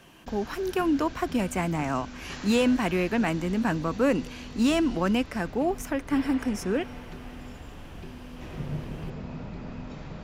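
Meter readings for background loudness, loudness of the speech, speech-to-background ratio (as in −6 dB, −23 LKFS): −41.0 LKFS, −27.0 LKFS, 14.0 dB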